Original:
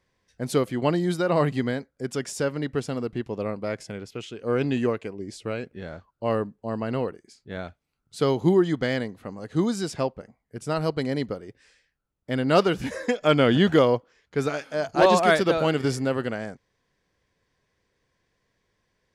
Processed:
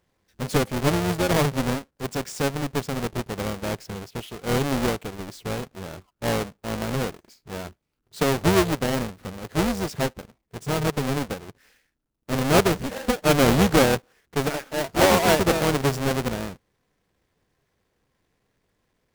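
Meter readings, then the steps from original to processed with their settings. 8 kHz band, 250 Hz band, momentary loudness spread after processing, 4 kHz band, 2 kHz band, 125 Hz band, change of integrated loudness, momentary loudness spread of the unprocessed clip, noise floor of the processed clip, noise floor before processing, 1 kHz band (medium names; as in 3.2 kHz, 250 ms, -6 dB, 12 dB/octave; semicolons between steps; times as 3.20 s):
+9.0 dB, +0.5 dB, 17 LU, +4.0 dB, +2.5 dB, +3.0 dB, +1.0 dB, 17 LU, -75 dBFS, -77 dBFS, +1.5 dB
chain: square wave that keeps the level; AM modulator 280 Hz, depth 70%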